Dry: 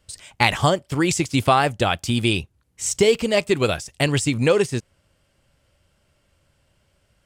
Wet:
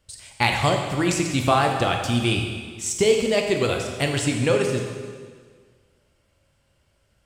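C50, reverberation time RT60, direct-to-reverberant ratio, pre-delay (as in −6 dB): 4.0 dB, 1.7 s, 2.0 dB, 7 ms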